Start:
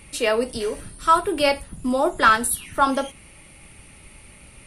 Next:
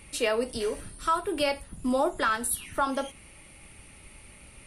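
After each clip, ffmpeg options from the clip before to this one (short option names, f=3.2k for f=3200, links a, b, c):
-af "alimiter=limit=-12.5dB:level=0:latency=1:release=327,equalizer=f=150:t=o:w=0.77:g=-2.5,volume=-3.5dB"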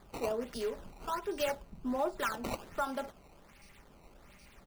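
-filter_complex "[0:a]aecho=1:1:5:0.44,acrossover=split=1400[a][b];[b]acrusher=samples=15:mix=1:aa=0.000001:lfo=1:lforange=24:lforate=1.3[c];[a][c]amix=inputs=2:normalize=0,volume=-8dB"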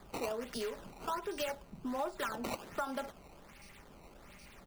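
-filter_complex "[0:a]acrossover=split=110|970[a][b][c];[a]acompressor=threshold=-60dB:ratio=4[d];[b]acompressor=threshold=-41dB:ratio=4[e];[c]acompressor=threshold=-42dB:ratio=4[f];[d][e][f]amix=inputs=3:normalize=0,volume=3dB"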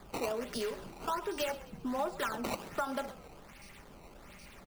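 -filter_complex "[0:a]asplit=5[a][b][c][d][e];[b]adelay=132,afreqshift=-42,volume=-17dB[f];[c]adelay=264,afreqshift=-84,volume=-23.7dB[g];[d]adelay=396,afreqshift=-126,volume=-30.5dB[h];[e]adelay=528,afreqshift=-168,volume=-37.2dB[i];[a][f][g][h][i]amix=inputs=5:normalize=0,volume=2.5dB"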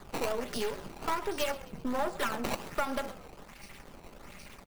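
-af "aeval=exprs='if(lt(val(0),0),0.251*val(0),val(0))':c=same,volume=6dB"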